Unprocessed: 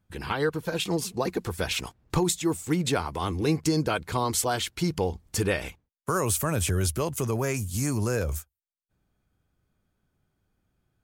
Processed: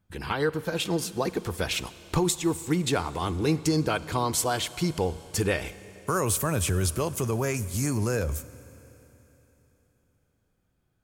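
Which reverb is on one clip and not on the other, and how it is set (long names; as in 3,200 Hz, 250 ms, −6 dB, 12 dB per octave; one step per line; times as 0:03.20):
four-comb reverb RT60 3.6 s, combs from 32 ms, DRR 16 dB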